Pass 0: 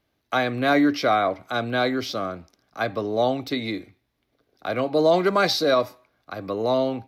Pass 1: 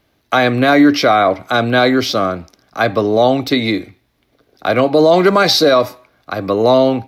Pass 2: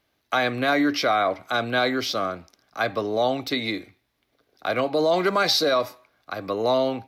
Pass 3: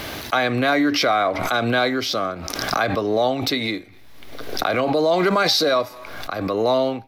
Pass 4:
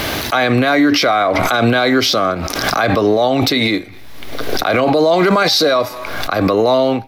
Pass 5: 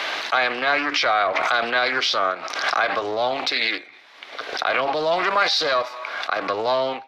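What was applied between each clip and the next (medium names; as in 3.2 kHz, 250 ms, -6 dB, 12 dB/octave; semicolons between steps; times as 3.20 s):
loudness maximiser +13 dB; trim -1 dB
bass shelf 500 Hz -7 dB; trim -7.5 dB
in parallel at -10.5 dB: hysteresis with a dead band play -29.5 dBFS; on the sum: swell ahead of each attack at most 34 dB/s
loudness maximiser +15 dB; trim -4 dB
band-pass 800–4000 Hz; loudspeaker Doppler distortion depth 0.23 ms; trim -2.5 dB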